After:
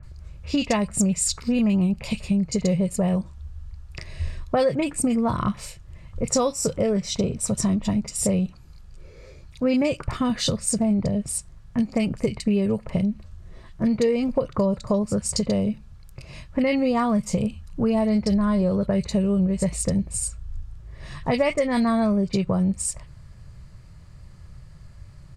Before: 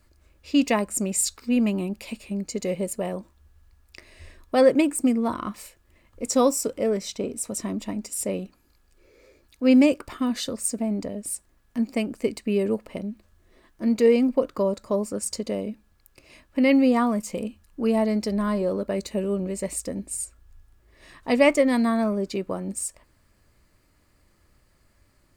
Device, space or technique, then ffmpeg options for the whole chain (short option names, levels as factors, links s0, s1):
jukebox: -filter_complex "[0:a]lowpass=7500,lowshelf=f=200:t=q:w=3:g=9.5,acompressor=threshold=0.0398:ratio=4,acrossover=split=2100[s0][s1];[s1]adelay=30[s2];[s0][s2]amix=inputs=2:normalize=0,volume=2.66"